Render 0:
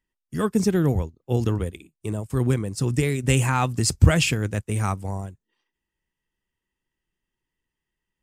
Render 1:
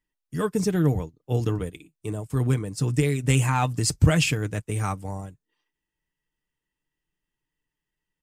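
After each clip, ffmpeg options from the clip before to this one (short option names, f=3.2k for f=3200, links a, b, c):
-af "aecho=1:1:6.7:0.44,volume=-2.5dB"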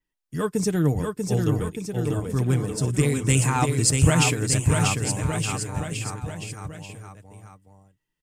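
-af "aecho=1:1:640|1216|1734|2201|2621:0.631|0.398|0.251|0.158|0.1,adynamicequalizer=threshold=0.00501:dfrequency=8200:dqfactor=1.4:tfrequency=8200:tqfactor=1.4:attack=5:release=100:ratio=0.375:range=3.5:mode=boostabove:tftype=bell"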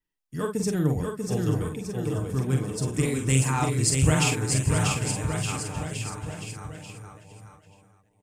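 -af "aecho=1:1:45|796|885:0.562|0.112|0.15,volume=-4dB"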